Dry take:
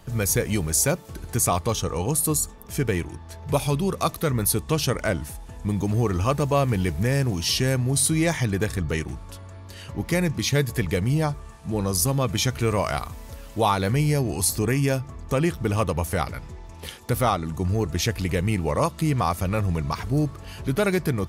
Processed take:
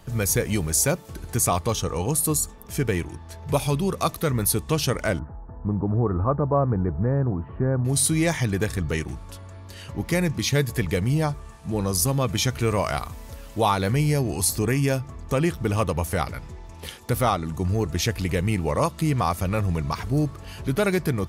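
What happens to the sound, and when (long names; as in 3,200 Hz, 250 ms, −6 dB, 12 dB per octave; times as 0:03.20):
0:05.19–0:07.85: Butterworth low-pass 1,400 Hz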